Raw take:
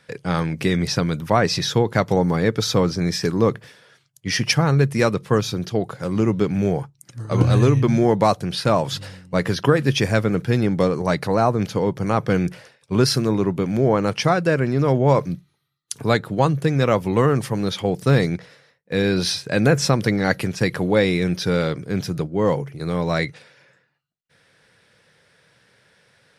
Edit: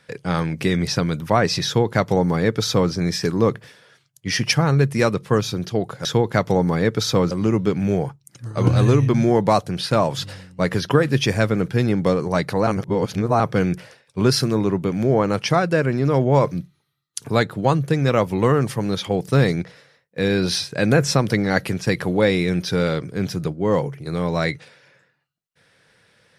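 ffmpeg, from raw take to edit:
ffmpeg -i in.wav -filter_complex "[0:a]asplit=5[link_01][link_02][link_03][link_04][link_05];[link_01]atrim=end=6.052[link_06];[link_02]atrim=start=1.658:end=2.922[link_07];[link_03]atrim=start=6.048:end=11.412[link_08];[link_04]atrim=start=11.408:end=12.142,asetpts=PTS-STARTPTS,areverse[link_09];[link_05]atrim=start=12.138[link_10];[link_06][link_07]acrossfade=duration=0.004:curve1=hsin:curve2=hsin[link_11];[link_11][link_08]acrossfade=duration=0.004:curve1=hsin:curve2=hsin[link_12];[link_12][link_09]acrossfade=duration=0.004:curve1=hsin:curve2=hsin[link_13];[link_13][link_10]acrossfade=duration=0.004:curve1=hsin:curve2=hsin" out.wav

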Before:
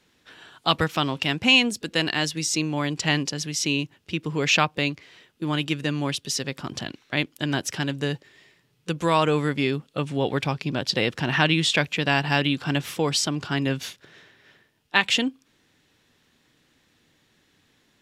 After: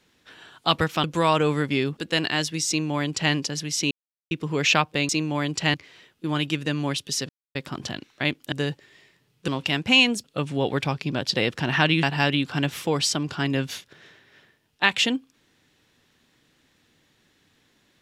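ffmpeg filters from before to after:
ffmpeg -i in.wav -filter_complex "[0:a]asplit=12[link_01][link_02][link_03][link_04][link_05][link_06][link_07][link_08][link_09][link_10][link_11][link_12];[link_01]atrim=end=1.042[link_13];[link_02]atrim=start=8.908:end=9.842[link_14];[link_03]atrim=start=1.798:end=3.74,asetpts=PTS-STARTPTS,afade=type=out:start_time=1.938:duration=0.004:curve=hsin[link_15];[link_04]atrim=start=3.74:end=4.14,asetpts=PTS-STARTPTS,volume=0[link_16];[link_05]atrim=start=4.14:end=4.922,asetpts=PTS-STARTPTS,afade=type=in:duration=0.004:curve=hsin[link_17];[link_06]atrim=start=2.508:end=3.162[link_18];[link_07]atrim=start=4.918:end=6.47,asetpts=PTS-STARTPTS,afade=type=out:start_time=1.548:duration=0.004:curve=hsin,apad=pad_dur=0.26[link_19];[link_08]atrim=start=6.47:end=7.442,asetpts=PTS-STARTPTS,afade=type=in:duration=0.004:curve=hsin[link_20];[link_09]atrim=start=7.948:end=8.912[link_21];[link_10]atrim=start=1.038:end=1.802[link_22];[link_11]atrim=start=9.838:end=11.632[link_23];[link_12]atrim=start=12.148[link_24];[link_13][link_14]acrossfade=duration=0.004:curve1=hsin:curve2=hsin[link_25];[link_15][link_16][link_17]concat=n=3:v=0:a=1[link_26];[link_25][link_26]acrossfade=duration=0.004:curve1=hsin:curve2=hsin[link_27];[link_27][link_18]acrossfade=duration=0.004:curve1=hsin:curve2=hsin[link_28];[link_19][link_20]concat=n=2:v=0:a=1[link_29];[link_28][link_29]acrossfade=duration=0.004:curve1=hsin:curve2=hsin[link_30];[link_30][link_21]acrossfade=duration=0.004:curve1=hsin:curve2=hsin[link_31];[link_31][link_22]acrossfade=duration=0.004:curve1=hsin:curve2=hsin[link_32];[link_32][link_23]acrossfade=duration=0.004:curve1=hsin:curve2=hsin[link_33];[link_33][link_24]acrossfade=duration=0.004:curve1=hsin:curve2=hsin" out.wav

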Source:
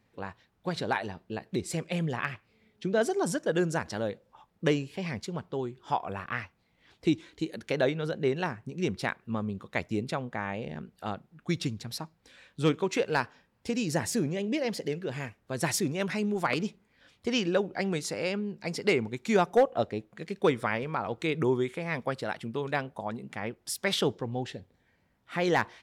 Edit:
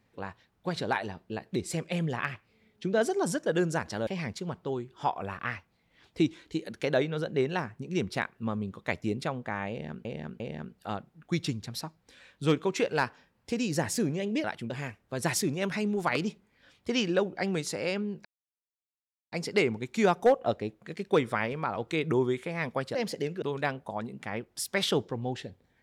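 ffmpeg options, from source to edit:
ffmpeg -i in.wav -filter_complex "[0:a]asplit=9[link_01][link_02][link_03][link_04][link_05][link_06][link_07][link_08][link_09];[link_01]atrim=end=4.072[link_10];[link_02]atrim=start=4.938:end=10.922[link_11];[link_03]atrim=start=10.568:end=10.922[link_12];[link_04]atrim=start=10.568:end=14.612[link_13];[link_05]atrim=start=22.258:end=22.522[link_14];[link_06]atrim=start=15.078:end=18.63,asetpts=PTS-STARTPTS,afade=type=out:start_time=3.548:duration=0.004:curve=hsin,apad=pad_dur=1.07[link_15];[link_07]atrim=start=18.63:end=22.262,asetpts=PTS-STARTPTS,afade=type=in:duration=0.004:curve=hsin[link_16];[link_08]atrim=start=14.608:end=15.082[link_17];[link_09]atrim=start=22.518[link_18];[link_10][link_11]acrossfade=duration=0.004:curve1=hsin:curve2=hsin[link_19];[link_19][link_12]acrossfade=duration=0.004:curve1=hsin:curve2=hsin[link_20];[link_20][link_13]acrossfade=duration=0.004:curve1=hsin:curve2=hsin[link_21];[link_21][link_14]acrossfade=duration=0.004:curve1=hsin:curve2=hsin[link_22];[link_15][link_16]concat=n=2:v=0:a=1[link_23];[link_22][link_23]acrossfade=duration=0.004:curve1=hsin:curve2=hsin[link_24];[link_24][link_17]acrossfade=duration=0.004:curve1=hsin:curve2=hsin[link_25];[link_25][link_18]acrossfade=duration=0.004:curve1=hsin:curve2=hsin" out.wav

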